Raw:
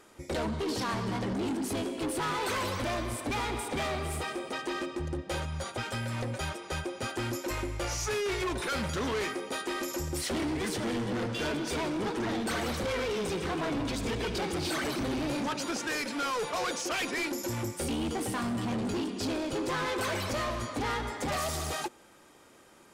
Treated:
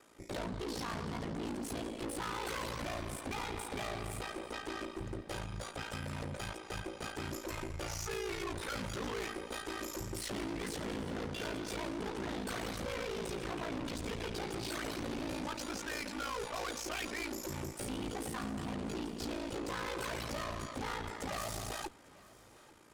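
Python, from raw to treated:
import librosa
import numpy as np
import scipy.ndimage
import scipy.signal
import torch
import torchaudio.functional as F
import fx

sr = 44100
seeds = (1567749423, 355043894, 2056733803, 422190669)

y = x * np.sin(2.0 * np.pi * 28.0 * np.arange(len(x)) / sr)
y = fx.tube_stage(y, sr, drive_db=35.0, bias=0.55)
y = fx.echo_feedback(y, sr, ms=847, feedback_pct=55, wet_db=-22)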